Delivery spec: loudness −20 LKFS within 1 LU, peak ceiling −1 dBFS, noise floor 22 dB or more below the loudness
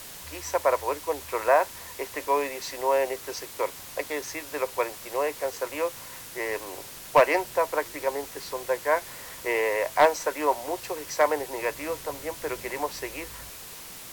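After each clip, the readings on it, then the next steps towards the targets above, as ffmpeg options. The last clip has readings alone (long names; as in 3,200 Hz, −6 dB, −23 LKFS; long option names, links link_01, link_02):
background noise floor −43 dBFS; target noise floor −50 dBFS; integrated loudness −28.0 LKFS; sample peak −9.5 dBFS; target loudness −20.0 LKFS
→ -af "afftdn=noise_reduction=7:noise_floor=-43"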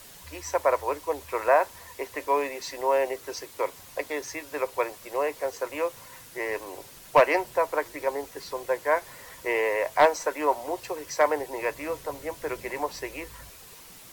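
background noise floor −48 dBFS; target noise floor −50 dBFS
→ -af "afftdn=noise_reduction=6:noise_floor=-48"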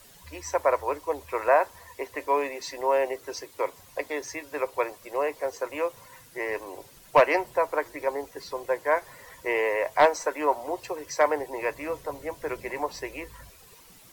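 background noise floor −53 dBFS; integrated loudness −28.0 LKFS; sample peak −9.5 dBFS; target loudness −20.0 LKFS
→ -af "volume=8dB"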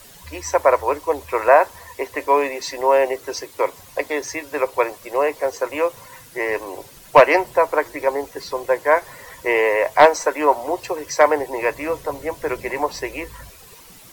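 integrated loudness −20.0 LKFS; sample peak −1.5 dBFS; background noise floor −45 dBFS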